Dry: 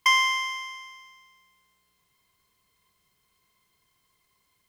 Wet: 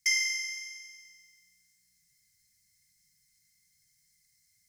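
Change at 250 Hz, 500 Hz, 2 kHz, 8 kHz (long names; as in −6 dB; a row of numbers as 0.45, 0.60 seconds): can't be measured, below −25 dB, −6.5 dB, +3.5 dB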